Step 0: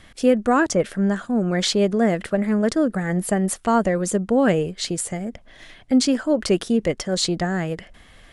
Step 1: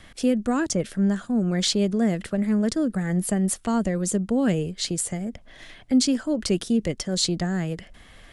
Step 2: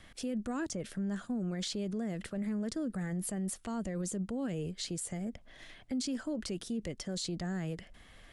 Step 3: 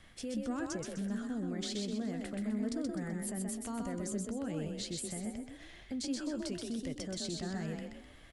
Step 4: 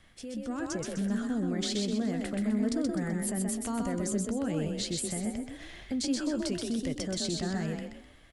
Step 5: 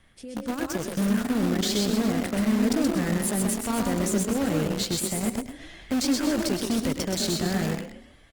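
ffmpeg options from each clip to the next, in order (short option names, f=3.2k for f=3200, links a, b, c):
-filter_complex "[0:a]acrossover=split=300|3000[a][b][c];[b]acompressor=threshold=-45dB:ratio=1.5[d];[a][d][c]amix=inputs=3:normalize=0"
-af "alimiter=limit=-21dB:level=0:latency=1:release=42,volume=-7.5dB"
-filter_complex "[0:a]asplit=2[a][b];[b]adelay=14,volume=-13.5dB[c];[a][c]amix=inputs=2:normalize=0,asplit=2[d][e];[e]asplit=5[f][g][h][i][j];[f]adelay=127,afreqshift=32,volume=-3.5dB[k];[g]adelay=254,afreqshift=64,volume=-11.9dB[l];[h]adelay=381,afreqshift=96,volume=-20.3dB[m];[i]adelay=508,afreqshift=128,volume=-28.7dB[n];[j]adelay=635,afreqshift=160,volume=-37.1dB[o];[k][l][m][n][o]amix=inputs=5:normalize=0[p];[d][p]amix=inputs=2:normalize=0,volume=-3dB"
-af "dynaudnorm=f=190:g=7:m=8dB,volume=-1.5dB"
-filter_complex "[0:a]asplit=2[a][b];[b]acrusher=bits=4:mix=0:aa=0.000001,volume=-4dB[c];[a][c]amix=inputs=2:normalize=0,aecho=1:1:106:0.266,volume=1.5dB" -ar 48000 -c:a libopus -b:a 32k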